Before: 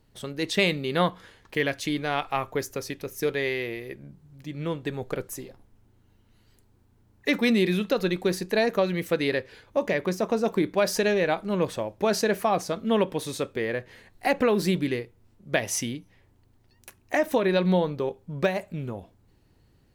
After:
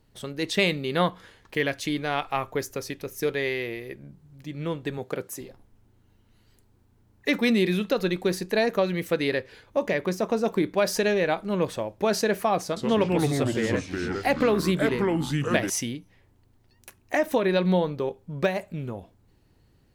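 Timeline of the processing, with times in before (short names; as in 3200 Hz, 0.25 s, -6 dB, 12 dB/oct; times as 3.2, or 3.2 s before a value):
4.98–5.41 HPF 130 Hz
12.64–15.7 echoes that change speed 0.123 s, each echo -4 st, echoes 3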